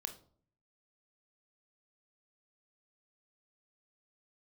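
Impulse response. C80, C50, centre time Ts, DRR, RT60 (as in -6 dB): 18.0 dB, 13.0 dB, 9 ms, 7.0 dB, 0.50 s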